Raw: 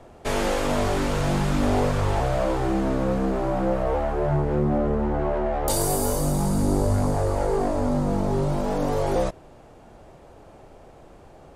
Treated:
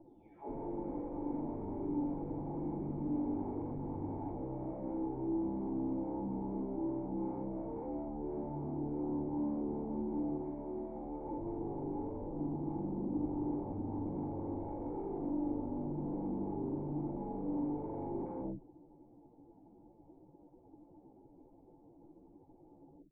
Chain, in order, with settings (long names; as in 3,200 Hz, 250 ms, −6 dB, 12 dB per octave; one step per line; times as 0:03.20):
every frequency bin delayed by itself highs early, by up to 488 ms
time stretch by phase vocoder 2×
wave folding −24 dBFS
formant resonators in series u
level +1 dB